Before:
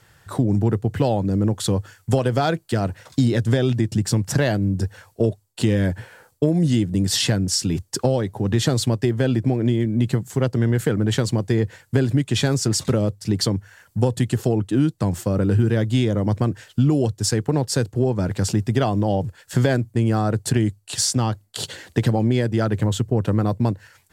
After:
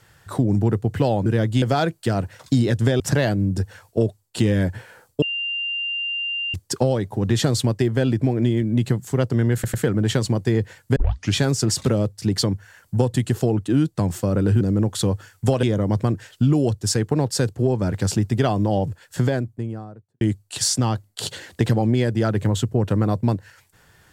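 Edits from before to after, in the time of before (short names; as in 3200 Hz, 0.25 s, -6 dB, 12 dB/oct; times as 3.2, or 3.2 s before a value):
1.26–2.28 swap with 15.64–16
3.66–4.23 cut
6.45–7.77 bleep 2790 Hz -23 dBFS
10.77 stutter 0.10 s, 3 plays
11.99 tape start 0.39 s
19.22–20.58 studio fade out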